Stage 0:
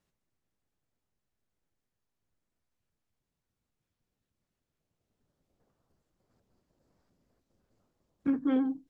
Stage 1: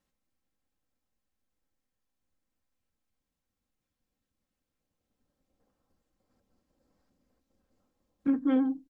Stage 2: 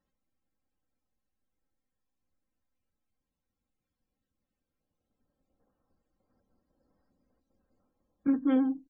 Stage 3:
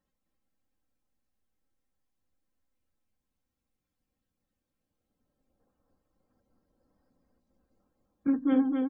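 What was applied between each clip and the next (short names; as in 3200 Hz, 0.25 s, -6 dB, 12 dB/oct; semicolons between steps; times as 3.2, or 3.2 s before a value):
comb 3.8 ms, depth 50%; gain -1.5 dB
loudest bins only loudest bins 64
echo 0.257 s -4.5 dB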